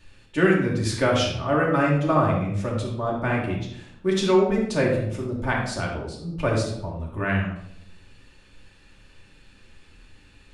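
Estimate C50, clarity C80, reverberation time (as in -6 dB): 3.0 dB, 7.0 dB, 0.70 s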